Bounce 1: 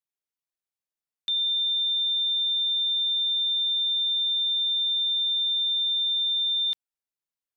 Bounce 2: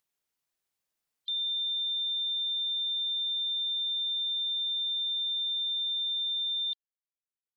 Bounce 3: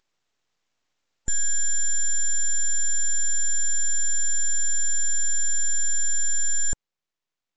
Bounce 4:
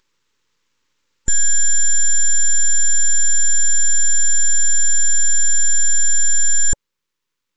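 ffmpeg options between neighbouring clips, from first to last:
-af "afftdn=nr=29:nf=-44,acompressor=mode=upward:threshold=0.00398:ratio=2.5,volume=0.501"
-af "crystalizer=i=7:c=0,aresample=16000,aeval=exprs='abs(val(0))':c=same,aresample=44100"
-af "asuperstop=centerf=690:order=8:qfactor=2.5,volume=2.66"

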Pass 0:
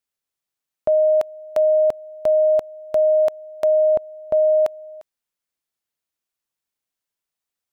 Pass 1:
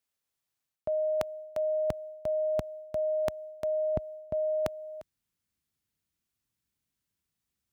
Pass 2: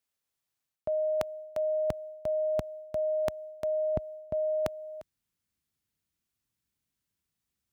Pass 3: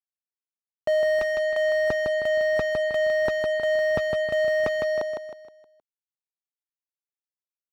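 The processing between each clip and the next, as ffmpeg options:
-af "highpass=48,asubboost=boost=7:cutoff=220,areverse,acompressor=threshold=0.0355:ratio=5,areverse"
-af anull
-filter_complex "[0:a]acrusher=bits=7:mix=0:aa=0.5,asplit=2[s0][s1];[s1]highpass=f=720:p=1,volume=79.4,asoftclip=type=tanh:threshold=0.2[s2];[s0][s2]amix=inputs=2:normalize=0,lowpass=f=1100:p=1,volume=0.501,aecho=1:1:157|314|471|628|785:0.562|0.225|0.09|0.036|0.0144"

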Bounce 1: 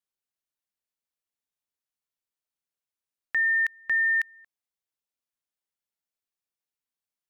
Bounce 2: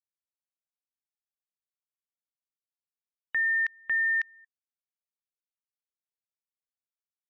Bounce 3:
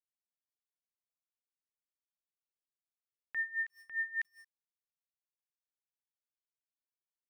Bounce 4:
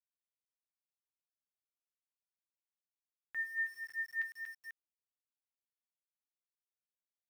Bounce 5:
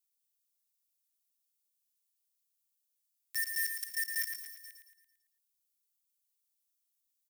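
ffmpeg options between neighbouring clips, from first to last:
-af "afftfilt=real='re*gte(hypot(re,im),0.00355)':imag='im*gte(hypot(re,im),0.00355)':win_size=1024:overlap=0.75,volume=0.75"
-af "acompressor=threshold=0.0224:ratio=2.5,aeval=exprs='val(0)*gte(abs(val(0)),0.00158)':c=same,aeval=exprs='val(0)*pow(10,-19*(0.5-0.5*cos(2*PI*5*n/s))/20)':c=same"
-af "flanger=delay=8.3:depth=1.1:regen=-48:speed=0.36:shape=triangular,aecho=1:1:104|237|492:0.178|0.501|0.282,aeval=exprs='val(0)*gte(abs(val(0)),0.00211)':c=same"
-filter_complex "[0:a]acrossover=split=2000|6900[s0][s1][s2];[s0]acrusher=bits=6:mix=0:aa=0.000001[s3];[s3][s1][s2]amix=inputs=3:normalize=0,crystalizer=i=7.5:c=0,aecho=1:1:112|224|336|448|560|672:0.473|0.232|0.114|0.0557|0.0273|0.0134,volume=0.422"

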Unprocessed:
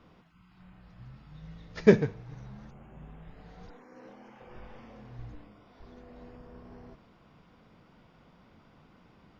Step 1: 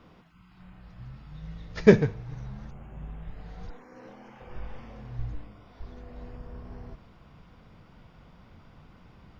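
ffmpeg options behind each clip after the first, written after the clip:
-af "asubboost=boost=2.5:cutoff=140,volume=1.5"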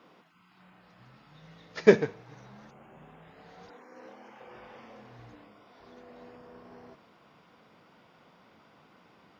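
-af "highpass=290"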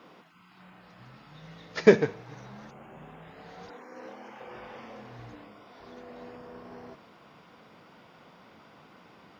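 -af "alimiter=limit=0.376:level=0:latency=1:release=233,volume=1.78"

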